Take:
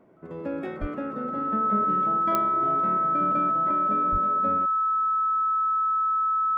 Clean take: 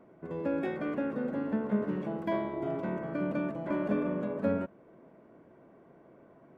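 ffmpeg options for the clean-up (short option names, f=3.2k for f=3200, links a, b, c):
-filter_complex "[0:a]adeclick=t=4,bandreject=f=1.3k:w=30,asplit=3[a][b][c];[a]afade=t=out:st=0.8:d=0.02[d];[b]highpass=f=140:w=0.5412,highpass=f=140:w=1.3066,afade=t=in:st=0.8:d=0.02,afade=t=out:st=0.92:d=0.02[e];[c]afade=t=in:st=0.92:d=0.02[f];[d][e][f]amix=inputs=3:normalize=0,asplit=3[g][h][i];[g]afade=t=out:st=4.11:d=0.02[j];[h]highpass=f=140:w=0.5412,highpass=f=140:w=1.3066,afade=t=in:st=4.11:d=0.02,afade=t=out:st=4.23:d=0.02[k];[i]afade=t=in:st=4.23:d=0.02[l];[j][k][l]amix=inputs=3:normalize=0,asetnsamples=n=441:p=0,asendcmd='3.71 volume volume 4dB',volume=0dB"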